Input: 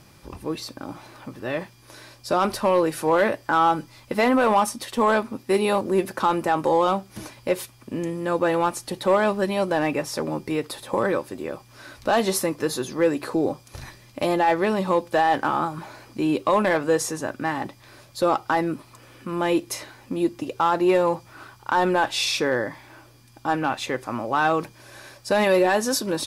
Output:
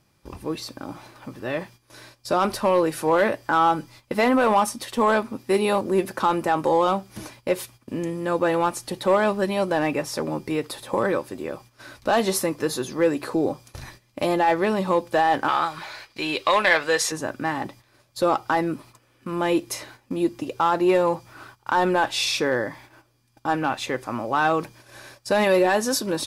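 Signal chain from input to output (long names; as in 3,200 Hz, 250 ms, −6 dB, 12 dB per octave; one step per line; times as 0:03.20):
noise gate −45 dBFS, range −13 dB
0:15.48–0:17.12: graphic EQ with 10 bands 125 Hz −7 dB, 250 Hz −11 dB, 2,000 Hz +8 dB, 4,000 Hz +10 dB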